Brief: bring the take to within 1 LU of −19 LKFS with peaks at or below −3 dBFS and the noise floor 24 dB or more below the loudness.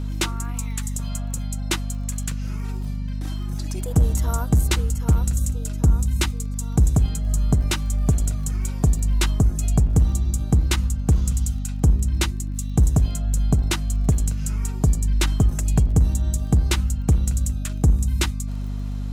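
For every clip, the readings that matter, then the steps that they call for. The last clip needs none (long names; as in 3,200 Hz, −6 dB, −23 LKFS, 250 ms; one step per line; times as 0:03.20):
crackle rate 24 per second; mains hum 50 Hz; hum harmonics up to 250 Hz; level of the hum −24 dBFS; integrated loudness −23.0 LKFS; sample peak −8.5 dBFS; target loudness −19.0 LKFS
→ click removal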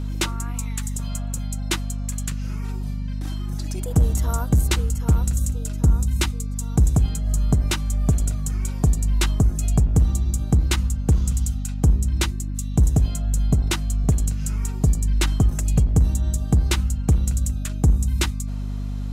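crackle rate 0.052 per second; mains hum 50 Hz; hum harmonics up to 250 Hz; level of the hum −24 dBFS
→ mains-hum notches 50/100/150/200/250 Hz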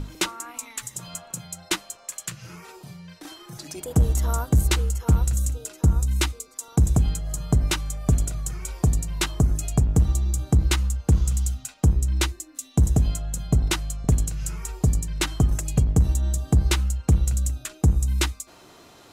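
mains hum none found; integrated loudness −24.0 LKFS; sample peak −9.0 dBFS; target loudness −19.0 LKFS
→ level +5 dB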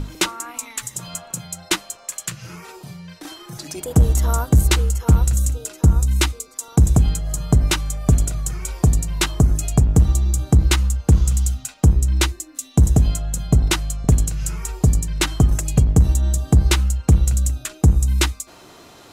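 integrated loudness −19.0 LKFS; sample peak −4.0 dBFS; background noise floor −46 dBFS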